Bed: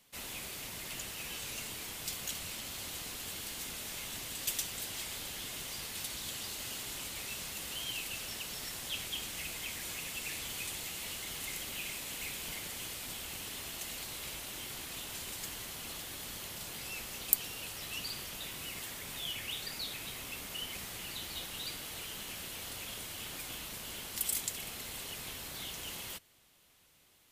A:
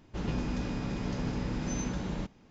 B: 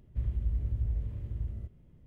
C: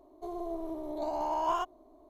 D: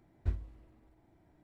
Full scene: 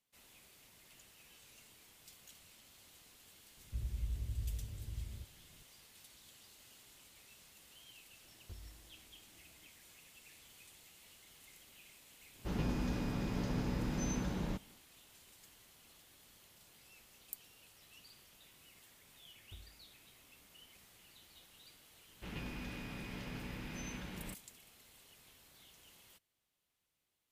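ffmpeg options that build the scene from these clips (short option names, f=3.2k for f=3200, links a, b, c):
-filter_complex "[4:a]asplit=2[a][b];[1:a]asplit=2[c][d];[0:a]volume=-19.5dB[e];[a]acompressor=threshold=-41dB:ratio=6:attack=3.2:release=140:knee=1:detection=peak[f];[b]alimiter=level_in=4dB:limit=-24dB:level=0:latency=1:release=71,volume=-4dB[g];[d]equalizer=f=2.5k:w=0.93:g=12[h];[2:a]atrim=end=2.06,asetpts=PTS-STARTPTS,volume=-8.5dB,afade=t=in:d=0.004:c=hsin,afade=t=out:st=2.056:d=0.004:c=hsin,adelay=157437S[i];[f]atrim=end=1.43,asetpts=PTS-STARTPTS,volume=-5.5dB,afade=t=in:d=0.004:c=hsin,afade=t=out:st=1.426:d=0.004:c=hsin,adelay=8240[j];[c]atrim=end=2.5,asetpts=PTS-STARTPTS,volume=-3.5dB,afade=t=in:d=0.1,afade=t=out:st=2.4:d=0.1,adelay=12310[k];[g]atrim=end=1.43,asetpts=PTS-STARTPTS,volume=-16.5dB,afade=t=in:d=0.004:c=hsin,afade=t=out:st=1.426:d=0.004:c=hsin,adelay=19260[l];[h]atrim=end=2.5,asetpts=PTS-STARTPTS,volume=-13dB,afade=t=in:d=0.004:c=hsin,afade=t=out:st=2.496:d=0.004:c=hsin,adelay=22080[m];[e][i][j][k][l][m]amix=inputs=6:normalize=0"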